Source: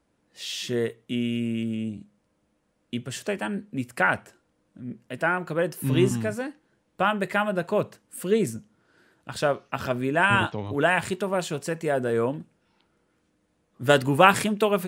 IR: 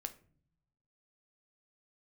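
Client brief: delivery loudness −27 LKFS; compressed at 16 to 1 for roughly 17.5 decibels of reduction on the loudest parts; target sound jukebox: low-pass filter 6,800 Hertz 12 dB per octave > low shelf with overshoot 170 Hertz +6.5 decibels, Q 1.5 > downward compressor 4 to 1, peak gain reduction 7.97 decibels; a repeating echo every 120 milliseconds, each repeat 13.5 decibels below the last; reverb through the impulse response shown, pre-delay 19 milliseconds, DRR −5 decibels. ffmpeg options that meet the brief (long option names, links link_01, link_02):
-filter_complex "[0:a]acompressor=threshold=-28dB:ratio=16,aecho=1:1:120|240:0.211|0.0444,asplit=2[link_01][link_02];[1:a]atrim=start_sample=2205,adelay=19[link_03];[link_02][link_03]afir=irnorm=-1:irlink=0,volume=7.5dB[link_04];[link_01][link_04]amix=inputs=2:normalize=0,lowpass=6800,lowshelf=frequency=170:width_type=q:width=1.5:gain=6.5,acompressor=threshold=-26dB:ratio=4,volume=4dB"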